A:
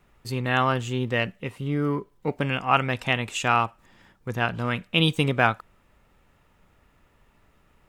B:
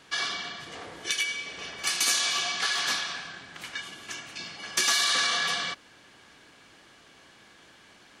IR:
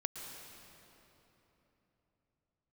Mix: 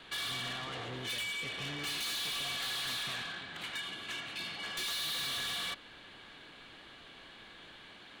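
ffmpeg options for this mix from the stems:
-filter_complex "[0:a]acompressor=threshold=-29dB:ratio=6,volume=-9.5dB,asplit=3[a][b][c];[a]atrim=end=3.22,asetpts=PTS-STARTPTS,afade=t=out:st=3.216:d=0.004:c=hsin[d];[b]atrim=start=3.22:end=5.04,asetpts=PTS-STARTPTS,volume=0[e];[c]atrim=start=5.04,asetpts=PTS-STARTPTS,afade=t=in:d=0.004:c=hsin[f];[d][e][f]concat=n=3:v=0:a=1[g];[1:a]volume=0.5dB[h];[g][h]amix=inputs=2:normalize=0,highshelf=f=4.6k:t=q:w=3:g=-6,acrossover=split=330|3000[i][j][k];[j]acompressor=threshold=-31dB:ratio=6[l];[i][l][k]amix=inputs=3:normalize=0,asoftclip=type=tanh:threshold=-35dB"

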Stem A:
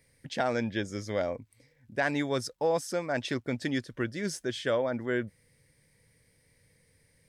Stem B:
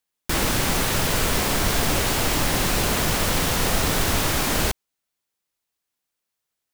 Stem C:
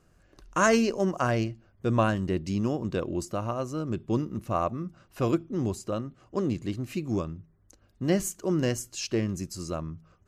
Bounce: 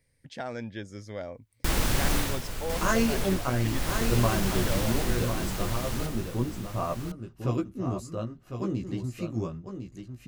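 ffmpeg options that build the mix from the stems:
-filter_complex "[0:a]volume=-7.5dB[a];[1:a]adelay=1350,volume=1dB,afade=t=out:st=2.17:d=0.24:silence=0.281838,afade=t=in:st=3.64:d=0.27:silence=0.421697,afade=t=out:st=4.77:d=0.56:silence=0.446684,asplit=2[b][c];[c]volume=-6.5dB[d];[2:a]flanger=delay=15.5:depth=2.2:speed=0.91,adelay=2250,volume=-1.5dB,asplit=2[e][f];[f]volume=-8dB[g];[d][g]amix=inputs=2:normalize=0,aecho=0:1:1053:1[h];[a][b][e][h]amix=inputs=4:normalize=0,lowshelf=f=94:g=9.5"

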